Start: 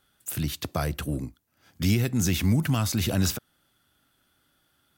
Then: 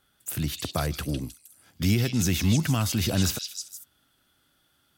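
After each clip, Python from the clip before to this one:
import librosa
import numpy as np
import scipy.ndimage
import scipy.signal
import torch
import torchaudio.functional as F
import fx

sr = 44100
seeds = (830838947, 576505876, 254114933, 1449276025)

y = fx.echo_stepped(x, sr, ms=156, hz=3900.0, octaves=0.7, feedback_pct=70, wet_db=-1.5)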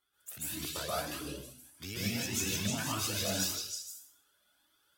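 y = fx.bass_treble(x, sr, bass_db=-13, treble_db=1)
y = fx.rev_plate(y, sr, seeds[0], rt60_s=0.63, hf_ratio=0.95, predelay_ms=120, drr_db=-7.5)
y = fx.comb_cascade(y, sr, direction='rising', hz=1.7)
y = y * librosa.db_to_amplitude(-8.0)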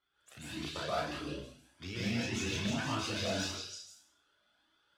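y = scipy.signal.sosfilt(scipy.signal.butter(2, 4000.0, 'lowpass', fs=sr, output='sos'), x)
y = fx.clip_asym(y, sr, top_db=-29.5, bottom_db=-27.5)
y = fx.doubler(y, sr, ms=34.0, db=-4.5)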